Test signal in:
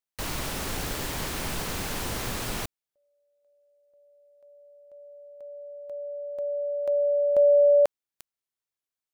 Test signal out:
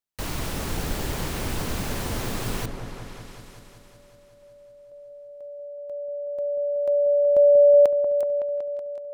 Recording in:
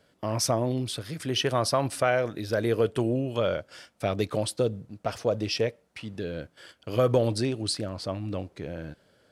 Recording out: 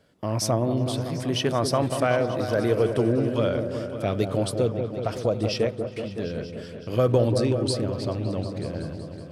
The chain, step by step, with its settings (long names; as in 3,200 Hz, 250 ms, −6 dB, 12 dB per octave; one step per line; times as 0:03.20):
low-shelf EQ 490 Hz +5 dB
on a send: echo whose low-pass opens from repeat to repeat 187 ms, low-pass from 750 Hz, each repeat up 1 octave, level −6 dB
on the sum: level −1 dB